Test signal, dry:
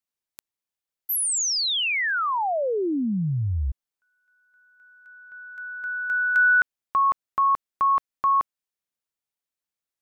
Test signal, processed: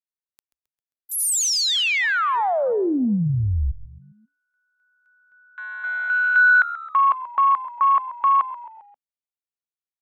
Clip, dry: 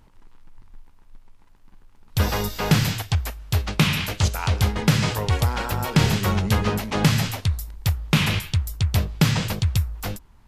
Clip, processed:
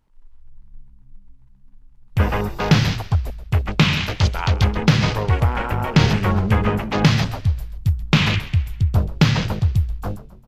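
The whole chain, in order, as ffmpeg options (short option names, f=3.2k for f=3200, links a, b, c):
-filter_complex "[0:a]afwtdn=0.0251,asplit=5[a][b][c][d][e];[b]adelay=133,afreqshift=-71,volume=-15.5dB[f];[c]adelay=266,afreqshift=-142,volume=-21.9dB[g];[d]adelay=399,afreqshift=-213,volume=-28.3dB[h];[e]adelay=532,afreqshift=-284,volume=-34.6dB[i];[a][f][g][h][i]amix=inputs=5:normalize=0,volume=3.5dB" -ar 48000 -c:a aac -b:a 192k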